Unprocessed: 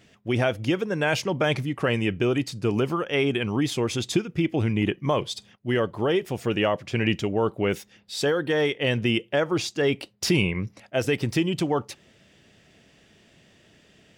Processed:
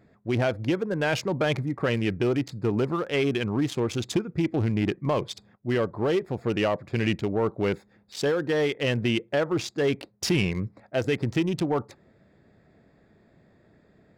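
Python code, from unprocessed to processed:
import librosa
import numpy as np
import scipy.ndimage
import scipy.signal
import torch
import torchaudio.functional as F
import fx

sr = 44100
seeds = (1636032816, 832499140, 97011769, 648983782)

y = fx.wiener(x, sr, points=15)
y = 10.0 ** (-14.5 / 20.0) * np.tanh(y / 10.0 ** (-14.5 / 20.0))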